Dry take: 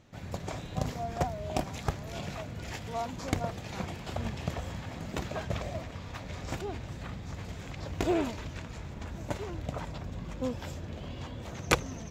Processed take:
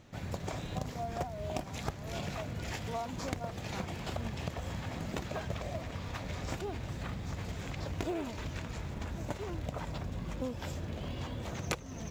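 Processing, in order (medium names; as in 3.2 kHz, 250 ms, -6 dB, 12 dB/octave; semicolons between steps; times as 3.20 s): in parallel at -9.5 dB: short-mantissa float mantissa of 2-bit; on the sum: compression 4:1, threshold -34 dBFS, peak gain reduction 15.5 dB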